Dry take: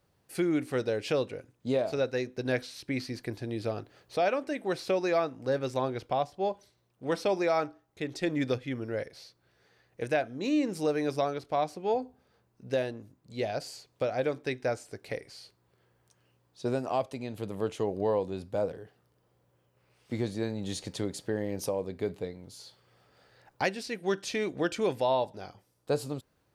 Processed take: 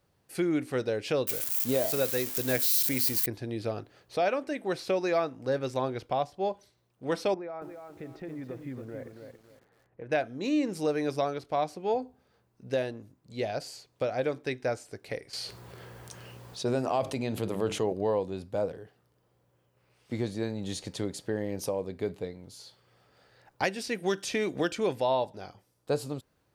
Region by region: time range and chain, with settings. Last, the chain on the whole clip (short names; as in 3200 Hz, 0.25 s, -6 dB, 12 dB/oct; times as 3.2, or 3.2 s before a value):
1.27–3.26 switching spikes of -25.5 dBFS + high shelf 11000 Hz +11 dB
7.34–10.12 LPF 1500 Hz + compressor 4:1, threshold -38 dBFS + lo-fi delay 0.278 s, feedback 35%, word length 10-bit, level -6 dB
15.33–17.93 notches 50/100/150/200/250/300/350 Hz + fast leveller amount 50%
23.63–24.72 high shelf 5800 Hz +5 dB + notch 4200 Hz, Q 18 + three-band squash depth 70%
whole clip: dry